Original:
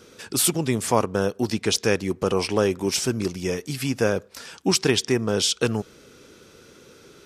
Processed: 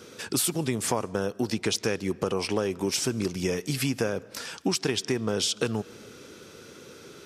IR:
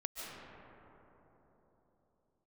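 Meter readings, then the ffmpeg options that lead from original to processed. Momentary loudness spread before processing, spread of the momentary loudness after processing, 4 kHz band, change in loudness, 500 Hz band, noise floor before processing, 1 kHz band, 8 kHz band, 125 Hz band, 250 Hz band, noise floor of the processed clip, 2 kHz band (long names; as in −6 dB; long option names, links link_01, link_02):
7 LU, 20 LU, −4.5 dB, −5.0 dB, −5.5 dB, −52 dBFS, −6.0 dB, −4.5 dB, −4.5 dB, −4.0 dB, −49 dBFS, −4.5 dB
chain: -filter_complex "[0:a]highpass=77,acompressor=threshold=-26dB:ratio=6,asplit=2[link_01][link_02];[1:a]atrim=start_sample=2205,afade=type=out:start_time=0.37:duration=0.01,atrim=end_sample=16758[link_03];[link_02][link_03]afir=irnorm=-1:irlink=0,volume=-19dB[link_04];[link_01][link_04]amix=inputs=2:normalize=0,volume=2dB"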